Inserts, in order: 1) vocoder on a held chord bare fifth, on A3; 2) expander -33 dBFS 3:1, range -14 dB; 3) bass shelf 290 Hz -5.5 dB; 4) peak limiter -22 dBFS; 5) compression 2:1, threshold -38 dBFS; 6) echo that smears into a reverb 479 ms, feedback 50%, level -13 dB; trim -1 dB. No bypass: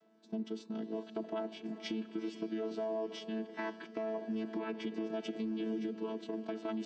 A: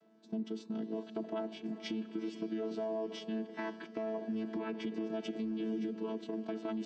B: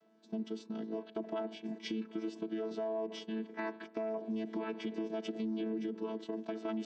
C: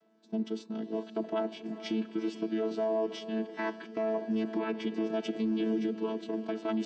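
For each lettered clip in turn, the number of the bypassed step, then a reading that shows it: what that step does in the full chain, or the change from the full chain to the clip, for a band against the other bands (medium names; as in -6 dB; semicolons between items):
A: 3, 125 Hz band +2.0 dB; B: 6, echo-to-direct -11.5 dB to none; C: 5, mean gain reduction 5.0 dB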